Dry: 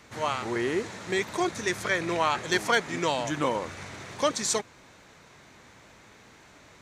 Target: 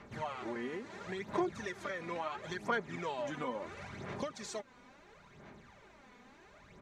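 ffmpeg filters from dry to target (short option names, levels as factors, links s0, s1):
-af "aecho=1:1:5:0.37,acompressor=threshold=0.0316:ratio=5,aphaser=in_gain=1:out_gain=1:delay=4.1:decay=0.6:speed=0.73:type=sinusoidal,lowpass=f=2000:p=1,volume=0.501"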